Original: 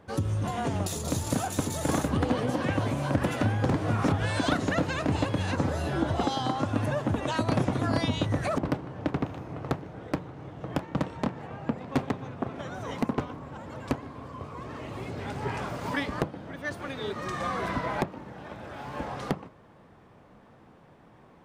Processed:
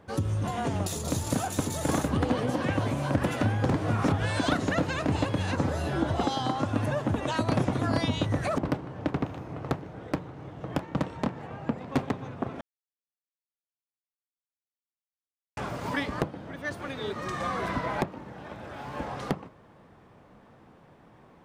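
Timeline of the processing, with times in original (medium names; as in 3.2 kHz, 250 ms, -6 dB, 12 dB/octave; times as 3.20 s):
12.61–15.57 s: mute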